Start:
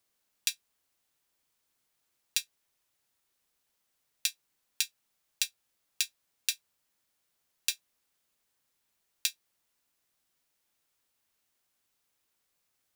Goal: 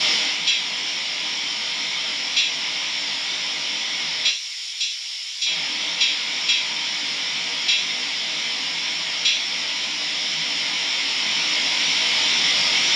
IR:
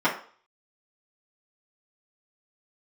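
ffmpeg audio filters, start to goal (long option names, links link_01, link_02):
-filter_complex "[0:a]aeval=exprs='val(0)+0.5*0.075*sgn(val(0))':channel_layout=same,asettb=1/sr,asplit=3[link_01][link_02][link_03];[link_01]atrim=end=4.284[link_04];[link_02]atrim=start=4.28:end=5.46,asetpts=PTS-STARTPTS,afade=type=in:duration=0.004:curve=qsin,afade=type=out:start_time=1.176:duration=0.004:curve=qsin,aderivative[link_05];[link_03]atrim=start=5.456[link_06];[link_04][link_05]acrossfade=duration=0.004:curve1=hsin:curve2=qsin[link_07];[link_07][link_06]acrossfade=duration=0.004:curve1=qsin:curve2=hsin,asettb=1/sr,asplit=3[link_08][link_09][link_10];[link_08]atrim=end=6.054[link_11];[link_09]atrim=start=6.05:end=6.5,asetpts=PTS-STARTPTS,afade=type=in:duration=0.004:curve=qsin,afade=type=out:start_time=0.446:duration=0.004:curve=qsin,highpass=150[link_12];[link_10]atrim=start=6.496[link_13];[link_11][link_12]acrossfade=duration=0.004:curve1=hsin:curve2=qsin[link_14];[link_14][link_13]acrossfade=duration=0.004:curve1=qsin:curve2=hsin[link_15];[1:a]atrim=start_sample=2205,atrim=end_sample=4410[link_16];[link_15][link_16]afir=irnorm=-1:irlink=0,flanger=delay=16.5:depth=6.5:speed=2,aexciter=amount=7.4:drive=7.8:freq=2200,lowpass=frequency=5000:width=0.5412,lowpass=frequency=5000:width=1.3066,dynaudnorm=framelen=390:gausssize=11:maxgain=11.5dB,volume=-6dB"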